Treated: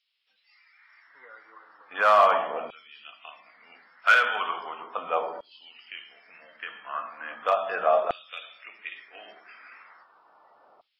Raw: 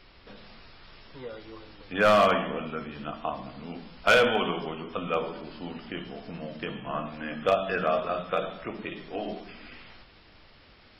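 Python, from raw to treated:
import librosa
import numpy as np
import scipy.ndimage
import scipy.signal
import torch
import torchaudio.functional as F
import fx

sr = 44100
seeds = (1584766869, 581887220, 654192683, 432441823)

y = fx.filter_lfo_highpass(x, sr, shape='saw_down', hz=0.37, low_hz=700.0, high_hz=3300.0, q=2.3)
y = fx.noise_reduce_blind(y, sr, reduce_db=17)
y = fx.tilt_shelf(y, sr, db=6.0, hz=970.0)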